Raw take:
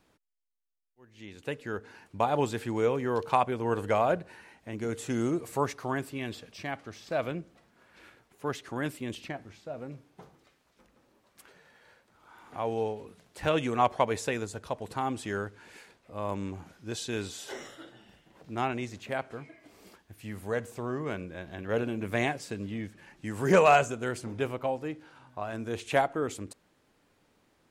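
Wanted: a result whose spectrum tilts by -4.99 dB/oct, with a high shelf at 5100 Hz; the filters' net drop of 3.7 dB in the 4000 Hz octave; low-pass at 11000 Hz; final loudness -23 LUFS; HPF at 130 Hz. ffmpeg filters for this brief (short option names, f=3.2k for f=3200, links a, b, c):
-af "highpass=130,lowpass=11k,equalizer=f=4k:t=o:g=-9,highshelf=f=5.1k:g=9,volume=8.5dB"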